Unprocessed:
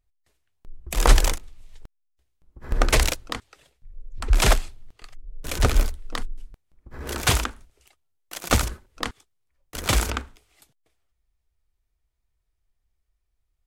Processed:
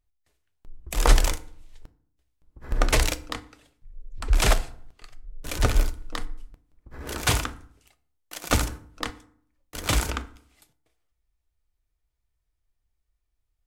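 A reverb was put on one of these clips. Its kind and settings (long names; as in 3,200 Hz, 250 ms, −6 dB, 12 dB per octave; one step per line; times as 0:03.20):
feedback delay network reverb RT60 0.58 s, low-frequency decay 1.3×, high-frequency decay 0.6×, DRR 11 dB
level −2.5 dB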